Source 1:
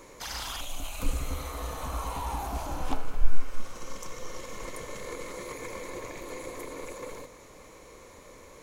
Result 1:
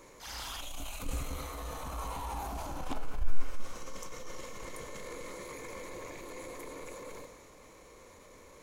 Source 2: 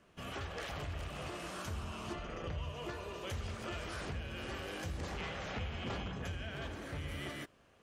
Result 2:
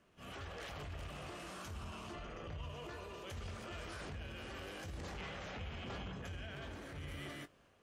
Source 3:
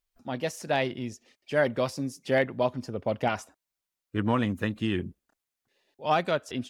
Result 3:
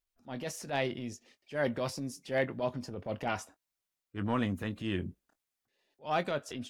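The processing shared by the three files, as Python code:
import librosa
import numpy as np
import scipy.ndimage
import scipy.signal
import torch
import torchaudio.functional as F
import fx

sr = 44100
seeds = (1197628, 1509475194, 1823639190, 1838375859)

y = fx.transient(x, sr, attack_db=-8, sustain_db=3)
y = fx.doubler(y, sr, ms=21.0, db=-13.0)
y = F.gain(torch.from_numpy(y), -4.5).numpy()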